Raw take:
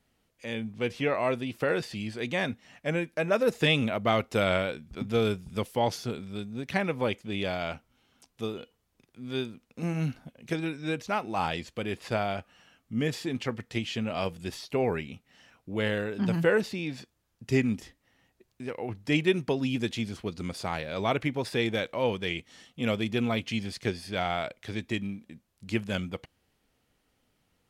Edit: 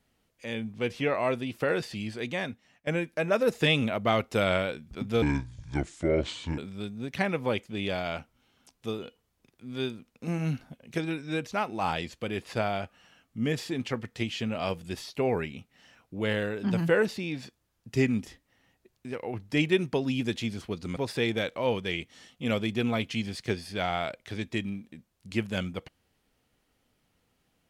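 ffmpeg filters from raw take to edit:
ffmpeg -i in.wav -filter_complex "[0:a]asplit=5[link_01][link_02][link_03][link_04][link_05];[link_01]atrim=end=2.87,asetpts=PTS-STARTPTS,afade=type=out:start_time=2.14:duration=0.73:silence=0.149624[link_06];[link_02]atrim=start=2.87:end=5.224,asetpts=PTS-STARTPTS,afade=type=in:duration=0.004:curve=hsin:silence=0.149624[link_07];[link_03]atrim=start=5.22:end=6.13,asetpts=PTS-STARTPTS,asetrate=29547,aresample=44100,atrim=end_sample=59897,asetpts=PTS-STARTPTS[link_08];[link_04]atrim=start=6.126:end=20.522[link_09];[link_05]atrim=start=21.338[link_10];[link_06][link_07]concat=n=2:v=0:a=1[link_11];[link_11][link_08]acrossfade=duration=0.004:curve1=hsin:curve2=hsin[link_12];[link_12][link_09]acrossfade=duration=0.004:curve1=hsin:curve2=hsin[link_13];[link_13][link_10]acrossfade=duration=0.004:curve1=hsin:curve2=hsin" out.wav

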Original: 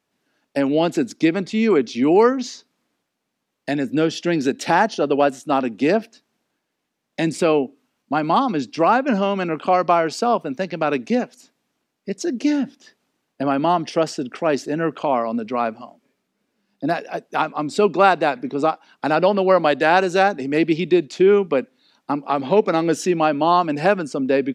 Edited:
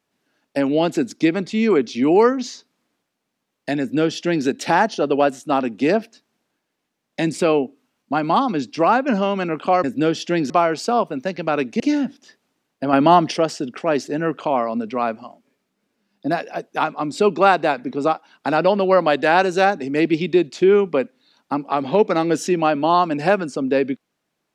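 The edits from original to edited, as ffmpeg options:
ffmpeg -i in.wav -filter_complex "[0:a]asplit=6[link_01][link_02][link_03][link_04][link_05][link_06];[link_01]atrim=end=9.842[link_07];[link_02]atrim=start=3.798:end=4.462[link_08];[link_03]atrim=start=9.838:end=11.142[link_09];[link_04]atrim=start=12.378:end=13.512[link_10];[link_05]atrim=start=13.508:end=13.952,asetpts=PTS-STARTPTS,volume=5.5dB[link_11];[link_06]atrim=start=13.948[link_12];[link_07][link_08]acrossfade=duration=0.004:curve1=hsin:curve2=hsin[link_13];[link_13][link_09]acrossfade=duration=0.004:curve1=hsin:curve2=hsin[link_14];[link_14][link_10]acrossfade=duration=0.004:curve1=hsin:curve2=hsin[link_15];[link_15][link_11]acrossfade=duration=0.004:curve1=hsin:curve2=hsin[link_16];[link_16][link_12]acrossfade=duration=0.004:curve1=hsin:curve2=hsin" out.wav

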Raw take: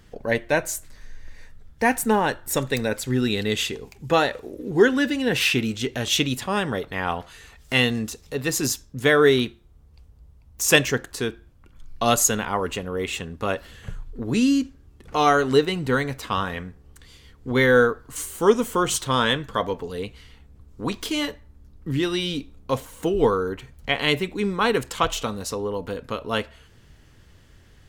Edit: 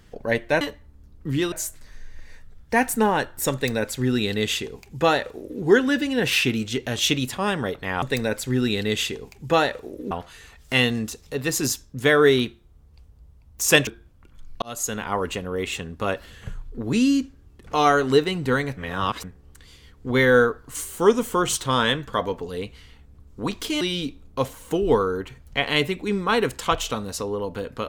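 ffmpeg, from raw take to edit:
ffmpeg -i in.wav -filter_complex "[0:a]asplit=10[link_01][link_02][link_03][link_04][link_05][link_06][link_07][link_08][link_09][link_10];[link_01]atrim=end=0.612[link_11];[link_02]atrim=start=21.218:end=22.132[link_12];[link_03]atrim=start=0.608:end=7.112[link_13];[link_04]atrim=start=2.618:end=4.712[link_14];[link_05]atrim=start=7.108:end=10.872[link_15];[link_06]atrim=start=11.278:end=12.03,asetpts=PTS-STARTPTS,afade=type=out:start_time=0.748:duration=0.004:curve=hsin[link_16];[link_07]atrim=start=12.03:end=16.182,asetpts=PTS-STARTPTS,afade=type=in:duration=0.55[link_17];[link_08]atrim=start=16.178:end=16.652,asetpts=PTS-STARTPTS,areverse[link_18];[link_09]atrim=start=16.648:end=21.222[link_19];[link_10]atrim=start=22.128[link_20];[link_11][link_12]acrossfade=duration=0.004:curve1=hsin:curve2=hsin[link_21];[link_21][link_13]acrossfade=duration=0.004:curve1=hsin:curve2=hsin[link_22];[link_22][link_14]acrossfade=duration=0.004:curve1=hsin:curve2=hsin[link_23];[link_23][link_15]acrossfade=duration=0.004:curve1=hsin:curve2=hsin[link_24];[link_16][link_17]concat=n=2:v=0:a=1[link_25];[link_24][link_25]acrossfade=duration=0.004:curve1=hsin:curve2=hsin[link_26];[link_26][link_18]acrossfade=duration=0.004:curve1=hsin:curve2=hsin[link_27];[link_27][link_19]acrossfade=duration=0.004:curve1=hsin:curve2=hsin[link_28];[link_28][link_20]acrossfade=duration=0.004:curve1=hsin:curve2=hsin" out.wav

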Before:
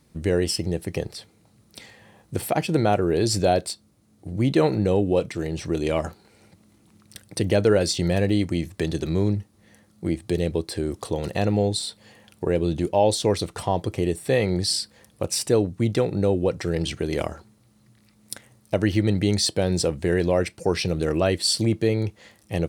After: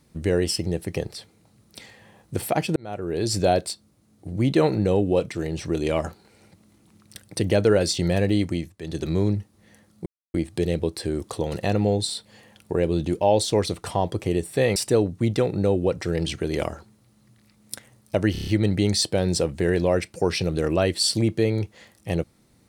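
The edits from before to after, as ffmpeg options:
ffmpeg -i in.wav -filter_complex "[0:a]asplit=11[link_01][link_02][link_03][link_04][link_05][link_06][link_07][link_08][link_09][link_10][link_11];[link_01]atrim=end=2.76,asetpts=PTS-STARTPTS,afade=type=out:start_time=2.756:duration=0.004:curve=hsin[link_12];[link_02]atrim=start=2.76:end=8.75,asetpts=PTS-STARTPTS,afade=type=in:duration=0.68,afade=type=out:start_time=5.66:duration=0.33:curve=qsin:silence=0.188365[link_13];[link_03]atrim=start=8.75:end=8.8,asetpts=PTS-STARTPTS,volume=-14.5dB[link_14];[link_04]atrim=start=8.8:end=10.06,asetpts=PTS-STARTPTS,afade=type=in:duration=0.33:curve=qsin:silence=0.188365,afade=type=out:start_time=1.256:duration=0.004:curve=hsin,apad=pad_dur=0.28[link_15];[link_05]atrim=start=10.06:end=14.482,asetpts=PTS-STARTPTS,afade=type=in:duration=0.004:curve=hsin[link_16];[link_06]atrim=start=15.348:end=18.942[link_17];[link_07]atrim=start=18.908:end=18.942[link_18];[link_08]atrim=start=18.908:end=18.942[link_19];[link_09]atrim=start=18.908:end=18.942[link_20];[link_10]atrim=start=18.908:end=18.942[link_21];[link_11]atrim=start=18.908[link_22];[link_12][link_13][link_14][link_15][link_16]concat=n=5:v=0:a=1[link_23];[link_23][link_17]acrossfade=duration=0.004:curve1=hsin:curve2=hsin[link_24];[link_24][link_18]acrossfade=duration=0.004:curve1=hsin:curve2=hsin[link_25];[link_25][link_19]acrossfade=duration=0.004:curve1=hsin:curve2=hsin[link_26];[link_26][link_20]acrossfade=duration=0.004:curve1=hsin:curve2=hsin[link_27];[link_27][link_21]acrossfade=duration=0.004:curve1=hsin:curve2=hsin[link_28];[link_28][link_22]acrossfade=duration=0.004:curve1=hsin:curve2=hsin" out.wav

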